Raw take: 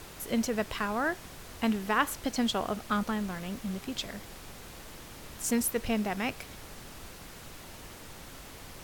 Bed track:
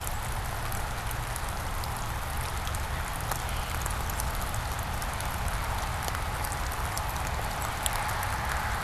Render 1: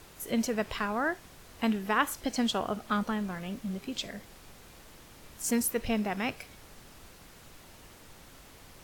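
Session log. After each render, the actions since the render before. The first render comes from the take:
noise reduction from a noise print 6 dB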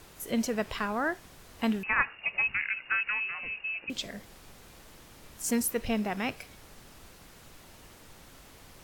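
0:01.83–0:03.90: voice inversion scrambler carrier 2,800 Hz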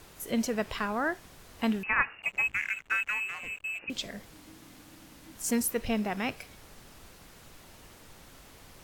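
0:02.22–0:03.79: slack as between gear wheels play −38.5 dBFS
0:04.30–0:05.35: frequency shifter −330 Hz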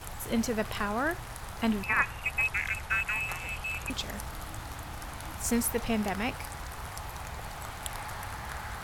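mix in bed track −8.5 dB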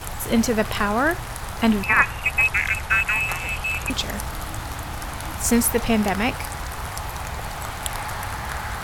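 level +9.5 dB

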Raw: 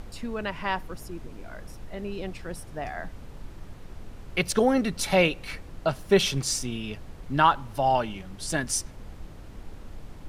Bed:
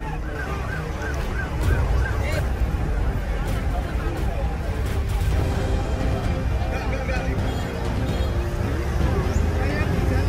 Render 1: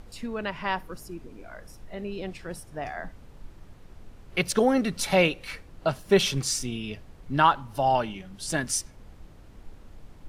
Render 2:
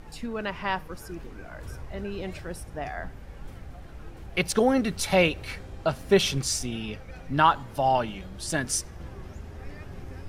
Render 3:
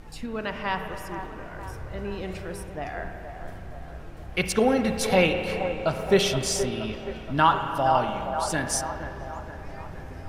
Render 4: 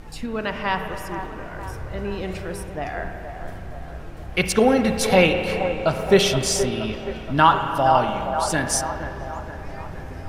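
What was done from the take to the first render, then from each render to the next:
noise reduction from a noise print 6 dB
mix in bed −20 dB
on a send: delay with a band-pass on its return 472 ms, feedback 55%, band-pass 780 Hz, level −7.5 dB; on the sum: spring reverb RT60 2.6 s, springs 32/54 ms, chirp 70 ms, DRR 6 dB
level +4.5 dB

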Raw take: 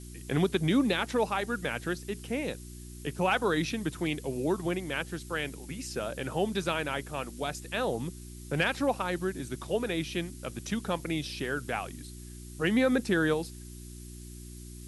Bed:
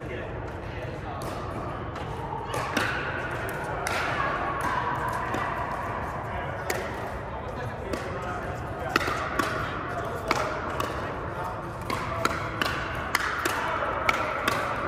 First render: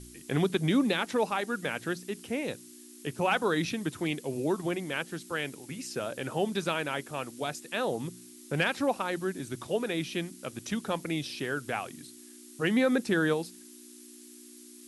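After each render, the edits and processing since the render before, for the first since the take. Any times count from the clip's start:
hum removal 60 Hz, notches 3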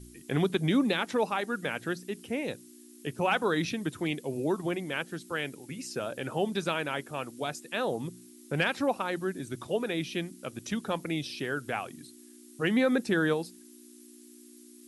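broadband denoise 6 dB, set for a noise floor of −51 dBFS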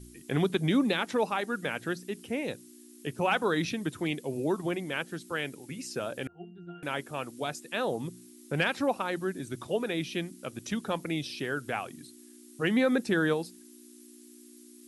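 0:06.27–0:06.83: resonances in every octave F, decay 0.51 s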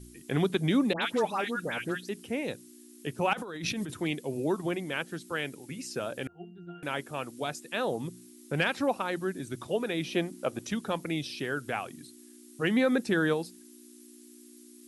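0:00.93–0:02.09: all-pass dispersion highs, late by 91 ms, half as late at 1,700 Hz
0:03.33–0:03.94: compressor whose output falls as the input rises −36 dBFS
0:10.04–0:10.65: parametric band 680 Hz +10.5 dB 1.9 octaves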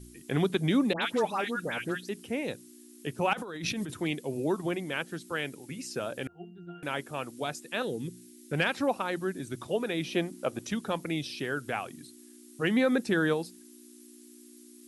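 0:07.82–0:08.53: flat-topped bell 840 Hz −15 dB 1.3 octaves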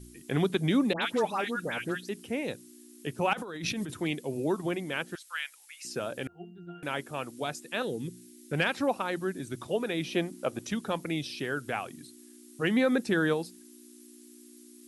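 0:05.15–0:05.85: high-pass filter 1,200 Hz 24 dB per octave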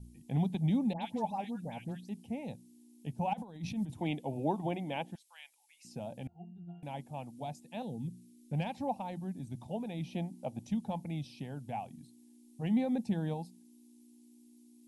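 0:03.98–0:05.11: gain on a spectral selection 270–3,800 Hz +8 dB
drawn EQ curve 220 Hz 0 dB, 380 Hz −18 dB, 850 Hz 0 dB, 1,300 Hz −30 dB, 2,300 Hz −15 dB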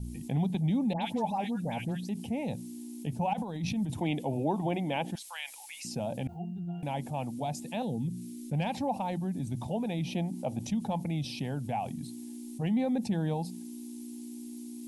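envelope flattener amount 50%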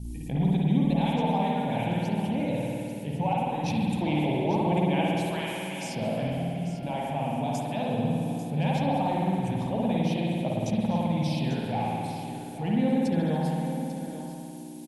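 on a send: single-tap delay 844 ms −11.5 dB
on the sum: spring reverb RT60 2.5 s, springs 53 ms, chirp 20 ms, DRR −4.5 dB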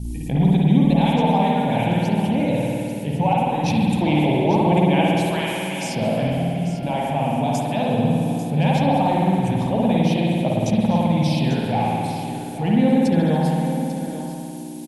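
level +8 dB

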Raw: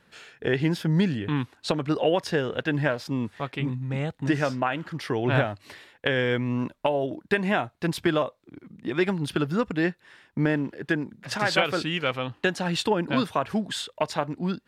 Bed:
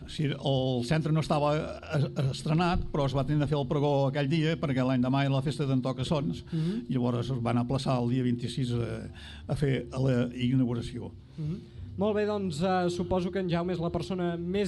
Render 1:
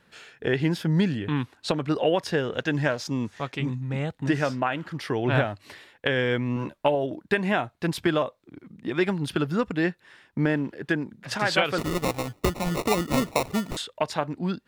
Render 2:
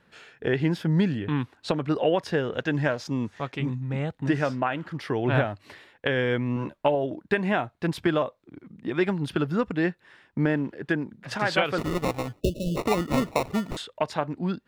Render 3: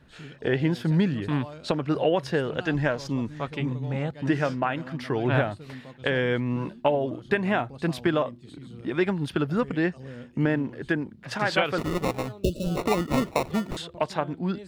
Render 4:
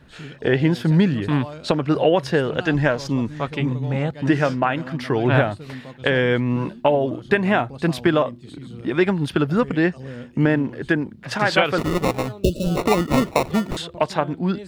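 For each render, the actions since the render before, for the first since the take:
0:02.54–0:03.81: parametric band 6,300 Hz +10.5 dB 0.62 octaves; 0:06.55–0:06.95: double-tracking delay 14 ms −5 dB; 0:11.78–0:13.77: sample-rate reduction 1,600 Hz
0:12.40–0:12.77: time-frequency box erased 650–2,600 Hz; high-shelf EQ 3,800 Hz −7.5 dB
mix in bed −14.5 dB
level +6 dB; brickwall limiter −3 dBFS, peak gain reduction 1.5 dB

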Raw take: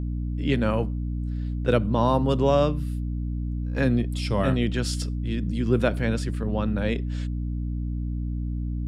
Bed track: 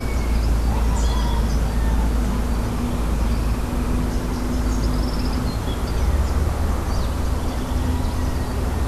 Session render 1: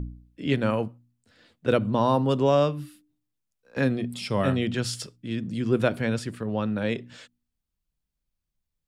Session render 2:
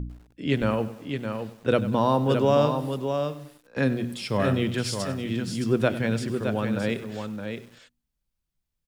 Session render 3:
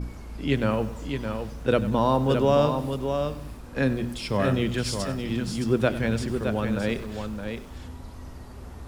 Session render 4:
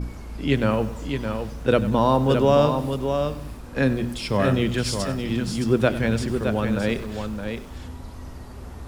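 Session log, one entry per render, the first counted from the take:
hum removal 60 Hz, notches 5
on a send: single-tap delay 617 ms −6.5 dB; on the sum: feedback echo at a low word length 97 ms, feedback 55%, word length 7 bits, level −15 dB
mix in bed track −18.5 dB
level +3 dB

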